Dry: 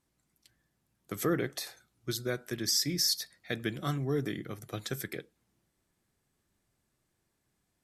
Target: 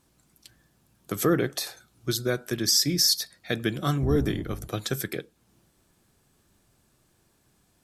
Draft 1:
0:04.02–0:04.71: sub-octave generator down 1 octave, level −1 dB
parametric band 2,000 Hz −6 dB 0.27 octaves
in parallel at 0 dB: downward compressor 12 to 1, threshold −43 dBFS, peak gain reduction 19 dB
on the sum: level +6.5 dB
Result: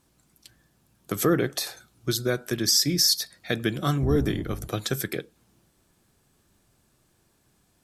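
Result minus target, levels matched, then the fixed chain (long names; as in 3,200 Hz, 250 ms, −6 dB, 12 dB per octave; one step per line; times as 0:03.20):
downward compressor: peak gain reduction −10.5 dB
0:04.02–0:04.71: sub-octave generator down 1 octave, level −1 dB
parametric band 2,000 Hz −6 dB 0.27 octaves
in parallel at 0 dB: downward compressor 12 to 1, threshold −54.5 dBFS, peak gain reduction 29.5 dB
on the sum: level +6.5 dB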